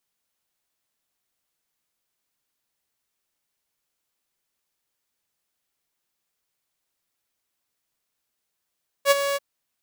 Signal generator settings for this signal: ADSR saw 561 Hz, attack 59 ms, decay 26 ms, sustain -10.5 dB, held 0.31 s, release 28 ms -9.5 dBFS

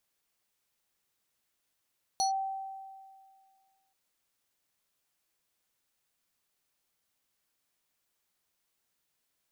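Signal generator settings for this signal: FM tone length 1.73 s, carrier 774 Hz, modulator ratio 6.61, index 1.1, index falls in 0.12 s linear, decay 1.97 s, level -24 dB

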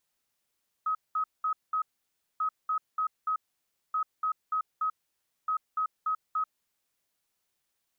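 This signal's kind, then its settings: beep pattern sine 1.27 kHz, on 0.09 s, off 0.20 s, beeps 4, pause 0.58 s, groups 4, -25.5 dBFS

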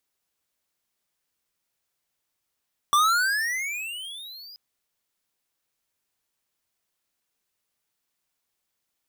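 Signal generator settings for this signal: gliding synth tone square, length 1.63 s, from 1.15 kHz, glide +25.5 st, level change -26 dB, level -18 dB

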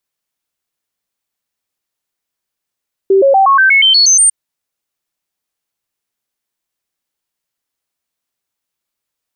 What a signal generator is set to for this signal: stepped sine 388 Hz up, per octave 2, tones 10, 0.12 s, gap 0.00 s -5 dBFS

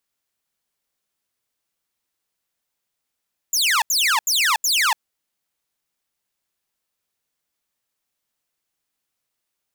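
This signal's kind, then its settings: burst of laser zaps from 7.4 kHz, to 820 Hz, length 0.29 s saw, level -13 dB, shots 4, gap 0.08 s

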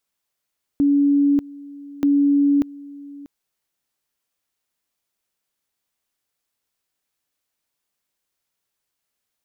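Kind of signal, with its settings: two-level tone 284 Hz -13 dBFS, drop 21.5 dB, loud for 0.59 s, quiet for 0.64 s, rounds 2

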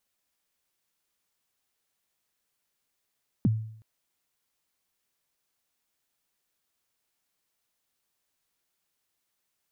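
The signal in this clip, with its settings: kick drum length 0.37 s, from 280 Hz, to 110 Hz, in 27 ms, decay 0.64 s, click off, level -17 dB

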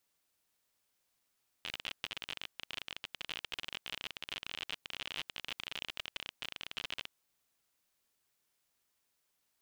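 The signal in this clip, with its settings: random clicks 41 per s -23 dBFS 5.44 s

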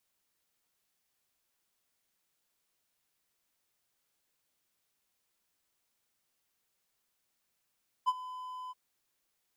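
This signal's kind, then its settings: ADSR triangle 1.01 kHz, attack 25 ms, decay 39 ms, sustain -17.5 dB, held 0.65 s, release 25 ms -20.5 dBFS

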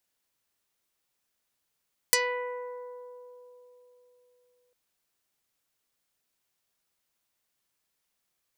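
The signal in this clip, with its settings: plucked string B4, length 2.60 s, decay 3.77 s, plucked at 0.38, dark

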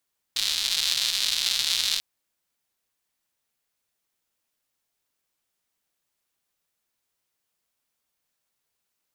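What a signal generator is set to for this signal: rain from filtered ticks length 1.64 s, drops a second 240, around 3.9 kHz, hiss -26.5 dB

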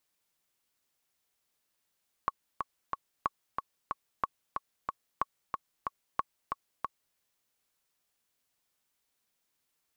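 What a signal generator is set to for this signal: metronome 184 bpm, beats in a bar 3, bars 5, 1.11 kHz, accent 4.5 dB -14.5 dBFS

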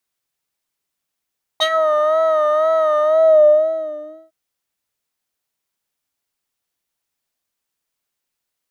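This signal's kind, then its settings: synth patch with vibrato D#5, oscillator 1 triangle, oscillator 2 square, interval +12 st, oscillator 2 level -15.5 dB, sub -26 dB, noise -29 dB, filter bandpass, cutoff 250 Hz, Q 3.4, filter envelope 4 oct, filter decay 0.18 s, filter sustain 50%, attack 22 ms, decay 0.07 s, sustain -12 dB, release 1.32 s, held 1.39 s, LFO 2 Hz, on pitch 60 cents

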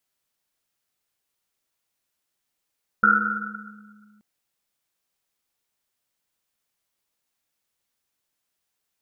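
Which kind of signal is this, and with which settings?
Risset drum length 1.18 s, pitch 210 Hz, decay 2.47 s, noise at 1.4 kHz, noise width 180 Hz, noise 75%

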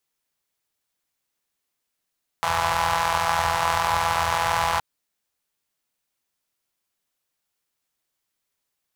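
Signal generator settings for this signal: four-cylinder engine model, steady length 2.37 s, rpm 5000, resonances 84/910 Hz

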